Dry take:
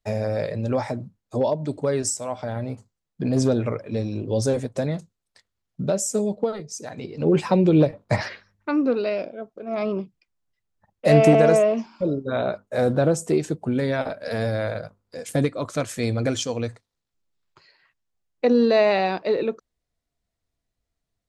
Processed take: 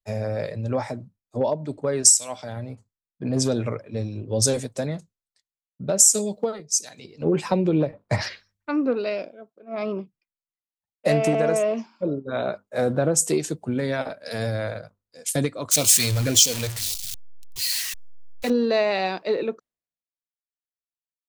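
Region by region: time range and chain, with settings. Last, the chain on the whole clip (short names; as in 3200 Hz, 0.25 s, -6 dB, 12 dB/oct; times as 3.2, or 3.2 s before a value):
15.71–18.5 zero-crossing step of -27.5 dBFS + LFO notch sine 1.8 Hz 240–1800 Hz
whole clip: high shelf 2900 Hz +9.5 dB; compressor 8:1, threshold -18 dBFS; three-band expander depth 100%; gain -1 dB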